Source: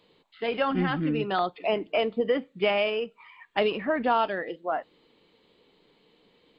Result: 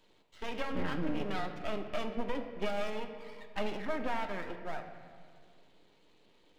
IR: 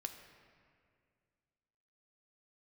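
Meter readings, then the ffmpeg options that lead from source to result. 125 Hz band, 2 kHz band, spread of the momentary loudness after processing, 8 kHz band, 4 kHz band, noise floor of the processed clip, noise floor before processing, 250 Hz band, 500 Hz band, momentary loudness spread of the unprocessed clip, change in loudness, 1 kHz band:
-8.5 dB, -9.5 dB, 10 LU, n/a, -11.0 dB, -65 dBFS, -65 dBFS, -8.0 dB, -12.0 dB, 8 LU, -10.5 dB, -11.0 dB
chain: -filter_complex "[0:a]acrossover=split=230[a][b];[b]acompressor=threshold=-40dB:ratio=1.5[c];[a][c]amix=inputs=2:normalize=0,aeval=exprs='max(val(0),0)':c=same[d];[1:a]atrim=start_sample=2205[e];[d][e]afir=irnorm=-1:irlink=0,volume=2dB"

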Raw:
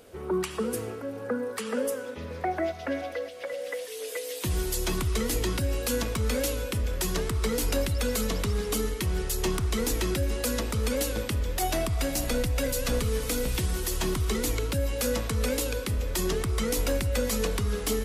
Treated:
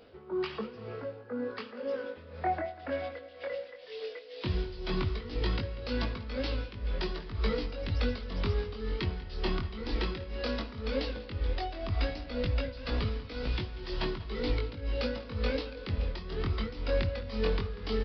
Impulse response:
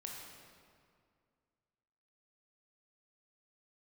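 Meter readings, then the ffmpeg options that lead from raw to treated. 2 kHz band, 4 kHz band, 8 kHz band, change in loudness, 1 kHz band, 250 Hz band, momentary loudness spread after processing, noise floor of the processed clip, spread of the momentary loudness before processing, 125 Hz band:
-5.0 dB, -5.5 dB, under -30 dB, -6.0 dB, -3.5 dB, -6.0 dB, 6 LU, -48 dBFS, 5 LU, -4.5 dB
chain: -filter_complex "[0:a]flanger=delay=19:depth=4.5:speed=0.15,tremolo=f=2:d=0.78,asplit=2[a][b];[b]adelay=192.4,volume=-17dB,highshelf=f=4k:g=-4.33[c];[a][c]amix=inputs=2:normalize=0,asplit=2[d][e];[1:a]atrim=start_sample=2205[f];[e][f]afir=irnorm=-1:irlink=0,volume=-13dB[g];[d][g]amix=inputs=2:normalize=0,aresample=11025,aresample=44100"

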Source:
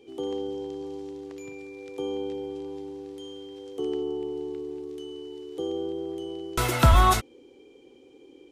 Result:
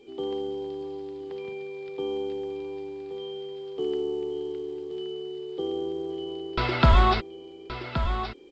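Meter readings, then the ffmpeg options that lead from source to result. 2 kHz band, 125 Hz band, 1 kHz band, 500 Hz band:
+0.5 dB, -0.5 dB, -1.0 dB, +1.5 dB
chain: -af "aecho=1:1:5:0.32,aecho=1:1:1123:0.335,aresample=11025,aresample=44100" -ar 16000 -c:a pcm_alaw

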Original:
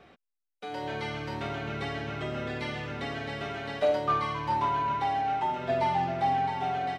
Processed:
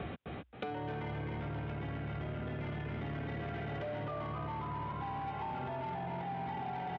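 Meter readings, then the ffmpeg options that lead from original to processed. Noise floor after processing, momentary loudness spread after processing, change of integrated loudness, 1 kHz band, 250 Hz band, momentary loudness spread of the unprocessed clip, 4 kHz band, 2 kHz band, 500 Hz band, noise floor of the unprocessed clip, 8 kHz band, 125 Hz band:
-45 dBFS, 1 LU, -9.5 dB, -12.0 dB, -4.0 dB, 8 LU, -13.0 dB, -9.5 dB, -10.5 dB, -84 dBFS, n/a, -1.0 dB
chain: -filter_complex "[0:a]asplit=2[a][b];[b]asplit=4[c][d][e][f];[c]adelay=270,afreqshift=58,volume=-8dB[g];[d]adelay=540,afreqshift=116,volume=-16.9dB[h];[e]adelay=810,afreqshift=174,volume=-25.7dB[i];[f]adelay=1080,afreqshift=232,volume=-34.6dB[j];[g][h][i][j]amix=inputs=4:normalize=0[k];[a][k]amix=inputs=2:normalize=0,acrossover=split=1100|2700[l][m][n];[l]acompressor=threshold=-35dB:ratio=4[o];[m]acompressor=threshold=-43dB:ratio=4[p];[n]acompressor=threshold=-59dB:ratio=4[q];[o][p][q]amix=inputs=3:normalize=0,equalizer=f=86:w=0.43:g=13.5,alimiter=level_in=7dB:limit=-24dB:level=0:latency=1:release=14,volume=-7dB,asplit=2[r][s];[s]aecho=0:1:257:0.562[t];[r][t]amix=inputs=2:normalize=0,aresample=8000,aresample=44100,highpass=51,asoftclip=type=tanh:threshold=-32.5dB,acompressor=threshold=-52dB:ratio=6,volume=13.5dB"

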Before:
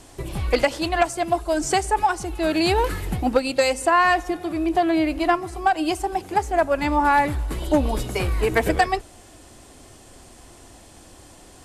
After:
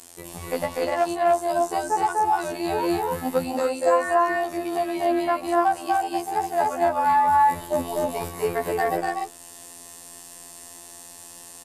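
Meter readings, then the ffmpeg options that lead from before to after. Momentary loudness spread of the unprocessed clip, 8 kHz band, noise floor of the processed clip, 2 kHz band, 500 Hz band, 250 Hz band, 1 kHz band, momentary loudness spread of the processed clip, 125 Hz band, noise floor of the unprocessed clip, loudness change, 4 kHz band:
7 LU, -2.5 dB, -44 dBFS, -6.0 dB, -0.5 dB, -5.0 dB, +0.5 dB, 20 LU, -11.0 dB, -48 dBFS, -1.5 dB, -8.5 dB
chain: -filter_complex "[0:a]aemphasis=mode=production:type=bsi,acrossover=split=630|1300[a][b][c];[c]acompressor=threshold=-39dB:ratio=6[d];[a][b][d]amix=inputs=3:normalize=0,afftfilt=real='hypot(re,im)*cos(PI*b)':imag='0':win_size=2048:overlap=0.75,aecho=1:1:244.9|285.7:0.794|0.891"

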